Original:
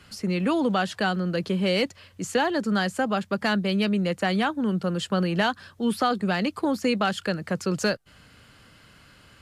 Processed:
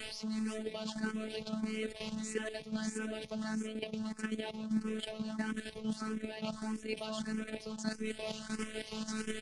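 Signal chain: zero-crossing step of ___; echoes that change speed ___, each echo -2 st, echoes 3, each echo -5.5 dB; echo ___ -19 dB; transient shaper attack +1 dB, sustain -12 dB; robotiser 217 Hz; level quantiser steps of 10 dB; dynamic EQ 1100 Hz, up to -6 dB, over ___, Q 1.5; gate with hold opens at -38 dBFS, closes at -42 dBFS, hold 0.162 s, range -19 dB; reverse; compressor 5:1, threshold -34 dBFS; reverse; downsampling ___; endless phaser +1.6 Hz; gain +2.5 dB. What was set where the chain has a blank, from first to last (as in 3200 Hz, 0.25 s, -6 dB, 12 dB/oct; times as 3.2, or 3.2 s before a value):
-26.5 dBFS, 0.323 s, 0.53 s, -45 dBFS, 22050 Hz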